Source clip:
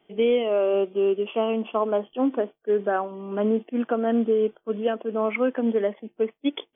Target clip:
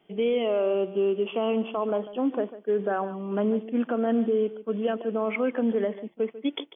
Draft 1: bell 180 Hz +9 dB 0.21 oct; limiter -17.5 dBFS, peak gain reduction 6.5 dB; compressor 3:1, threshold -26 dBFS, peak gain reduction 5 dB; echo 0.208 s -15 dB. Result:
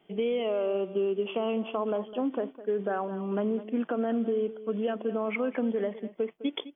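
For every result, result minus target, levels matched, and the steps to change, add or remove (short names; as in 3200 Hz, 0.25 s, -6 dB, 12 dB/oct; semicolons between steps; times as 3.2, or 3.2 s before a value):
echo 62 ms late; compressor: peak gain reduction +5 dB
change: echo 0.146 s -15 dB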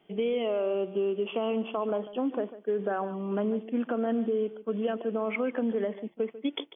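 compressor: peak gain reduction +5 dB
remove: compressor 3:1, threshold -26 dBFS, peak gain reduction 5 dB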